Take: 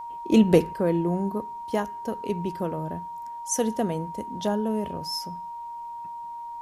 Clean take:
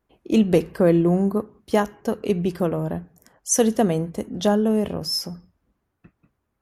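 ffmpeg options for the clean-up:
-af "bandreject=f=940:w=30,agate=range=0.0891:threshold=0.0355,asetnsamples=n=441:p=0,asendcmd='0.73 volume volume 7dB',volume=1"

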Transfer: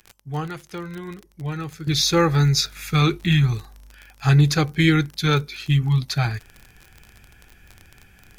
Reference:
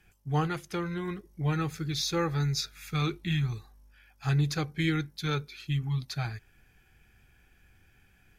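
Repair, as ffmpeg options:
-af "adeclick=t=4,asetnsamples=n=441:p=0,asendcmd='1.87 volume volume -11dB',volume=1"

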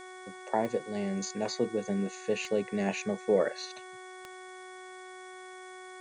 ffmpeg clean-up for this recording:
-af "adeclick=t=4,bandreject=f=370.5:t=h:w=4,bandreject=f=741:t=h:w=4,bandreject=f=1111.5:t=h:w=4,bandreject=f=1482:t=h:w=4,bandreject=f=1852.5:t=h:w=4,bandreject=f=2223:t=h:w=4,bandreject=f=3400:w=30,afftdn=nr=30:nf=-47"

